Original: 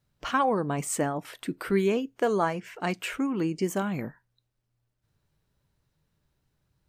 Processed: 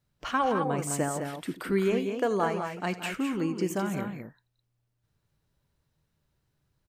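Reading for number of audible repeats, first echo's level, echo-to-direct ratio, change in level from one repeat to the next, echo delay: 3, -17.0 dB, -5.5 dB, no regular repeats, 83 ms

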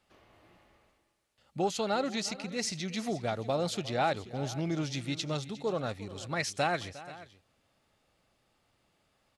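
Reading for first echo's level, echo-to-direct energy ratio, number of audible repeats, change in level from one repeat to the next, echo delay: -17.5 dB, -15.0 dB, 2, no regular repeats, 356 ms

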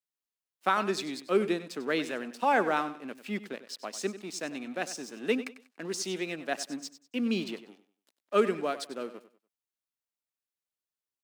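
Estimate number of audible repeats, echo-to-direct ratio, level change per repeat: 2, -13.5 dB, -11.0 dB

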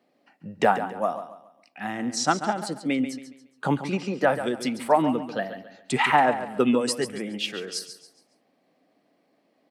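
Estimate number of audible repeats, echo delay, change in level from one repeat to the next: 3, 139 ms, -9.5 dB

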